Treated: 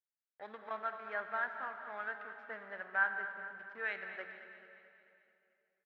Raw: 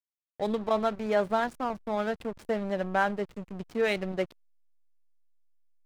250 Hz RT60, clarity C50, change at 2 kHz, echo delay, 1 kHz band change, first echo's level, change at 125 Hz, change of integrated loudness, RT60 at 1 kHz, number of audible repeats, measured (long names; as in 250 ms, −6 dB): 3.0 s, 6.0 dB, −0.5 dB, 219 ms, −10.0 dB, −12.0 dB, below −25 dB, −9.0 dB, 2.6 s, 5